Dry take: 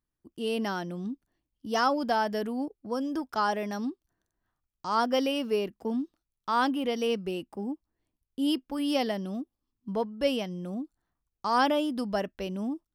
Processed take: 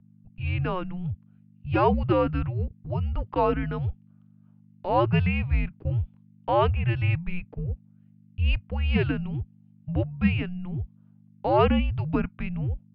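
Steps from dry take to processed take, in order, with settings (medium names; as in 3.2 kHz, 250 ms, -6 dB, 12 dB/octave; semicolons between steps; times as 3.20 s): level rider gain up to 4.5 dB; hum 50 Hz, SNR 19 dB; mistuned SSB -360 Hz 160–3300 Hz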